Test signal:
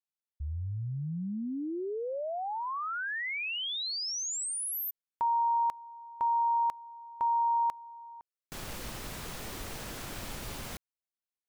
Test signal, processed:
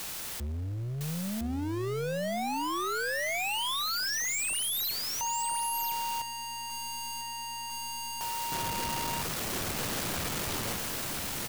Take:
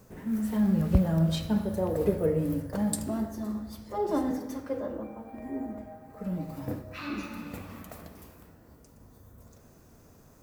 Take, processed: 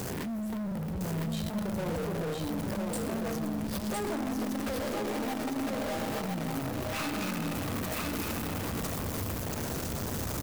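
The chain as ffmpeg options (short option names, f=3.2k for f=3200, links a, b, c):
-filter_complex "[0:a]aeval=exprs='val(0)+0.5*0.0422*sgn(val(0))':c=same,highpass=f=60:w=0.5412,highpass=f=60:w=1.3066,acompressor=threshold=-27dB:ratio=10:attack=1:release=28:knee=6,aeval=exprs='0.0944*(cos(1*acos(clip(val(0)/0.0944,-1,1)))-cos(1*PI/2))+0.00473*(cos(3*acos(clip(val(0)/0.0944,-1,1)))-cos(3*PI/2))+0.00944*(cos(5*acos(clip(val(0)/0.0944,-1,1)))-cos(5*PI/2))+0.00596*(cos(8*acos(clip(val(0)/0.0944,-1,1)))-cos(8*PI/2))':c=same,acontrast=89,asoftclip=type=tanh:threshold=-26.5dB,aeval=exprs='val(0)+0.00251*(sin(2*PI*60*n/s)+sin(2*PI*2*60*n/s)/2+sin(2*PI*3*60*n/s)/3+sin(2*PI*4*60*n/s)/4+sin(2*PI*5*60*n/s)/5)':c=same,asplit=2[a][b];[b]aecho=0:1:1008:0.708[c];[a][c]amix=inputs=2:normalize=0,acrusher=bits=6:mode=log:mix=0:aa=0.000001,volume=-5.5dB"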